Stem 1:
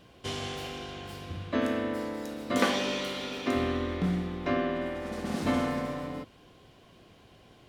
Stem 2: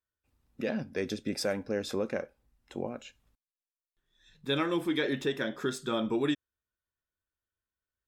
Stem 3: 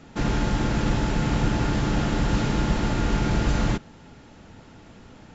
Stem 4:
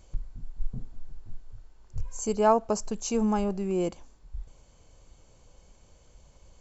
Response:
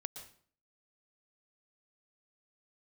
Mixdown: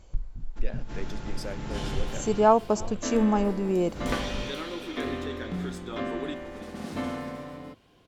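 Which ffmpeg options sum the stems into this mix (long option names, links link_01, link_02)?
-filter_complex "[0:a]adelay=1500,volume=-4.5dB[link_01];[1:a]highpass=230,volume=-7dB,asplit=2[link_02][link_03];[link_03]volume=-14.5dB[link_04];[2:a]adelay=400,volume=-11.5dB,asplit=3[link_05][link_06][link_07];[link_05]atrim=end=2.12,asetpts=PTS-STARTPTS,afade=type=out:start_time=2.116:duration=0.004:curve=hsin[link_08];[link_06]atrim=start=2.12:end=3.63,asetpts=PTS-STARTPTS,volume=0[link_09];[link_07]atrim=start=3.63,asetpts=PTS-STARTPTS,afade=type=in:duration=0.004:curve=hsin[link_10];[link_08][link_09][link_10]concat=n=3:v=0:a=1,asplit=2[link_11][link_12];[link_12]volume=-4dB[link_13];[3:a]highshelf=frequency=6900:gain=-10,volume=2.5dB,asplit=3[link_14][link_15][link_16];[link_15]volume=-24dB[link_17];[link_16]apad=whole_len=253482[link_18];[link_11][link_18]sidechaincompress=threshold=-43dB:ratio=12:attack=16:release=131[link_19];[link_04][link_13][link_17]amix=inputs=3:normalize=0,aecho=0:1:327:1[link_20];[link_01][link_02][link_19][link_14][link_20]amix=inputs=5:normalize=0"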